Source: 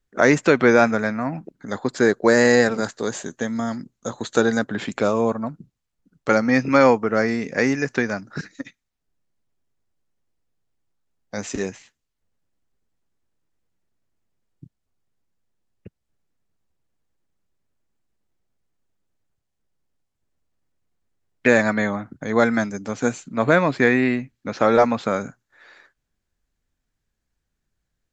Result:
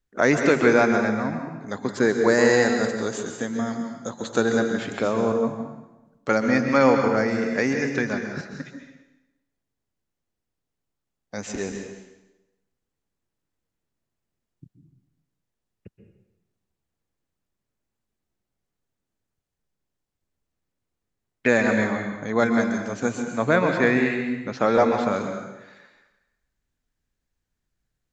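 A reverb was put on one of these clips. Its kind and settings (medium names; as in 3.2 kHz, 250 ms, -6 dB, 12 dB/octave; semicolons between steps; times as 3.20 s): plate-style reverb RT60 1 s, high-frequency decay 0.9×, pre-delay 115 ms, DRR 4.5 dB; trim -3.5 dB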